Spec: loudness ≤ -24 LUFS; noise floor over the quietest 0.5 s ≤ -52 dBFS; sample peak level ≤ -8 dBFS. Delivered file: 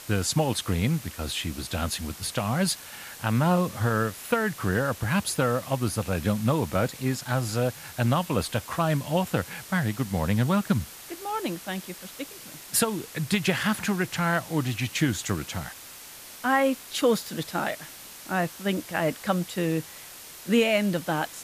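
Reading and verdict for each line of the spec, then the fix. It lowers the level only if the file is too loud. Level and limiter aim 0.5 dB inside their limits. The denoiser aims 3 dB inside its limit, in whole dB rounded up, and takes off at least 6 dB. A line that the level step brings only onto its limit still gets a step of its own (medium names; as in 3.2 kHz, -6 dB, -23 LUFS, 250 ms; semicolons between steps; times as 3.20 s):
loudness -27.0 LUFS: pass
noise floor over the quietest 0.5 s -44 dBFS: fail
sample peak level -11.0 dBFS: pass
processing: noise reduction 11 dB, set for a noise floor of -44 dBFS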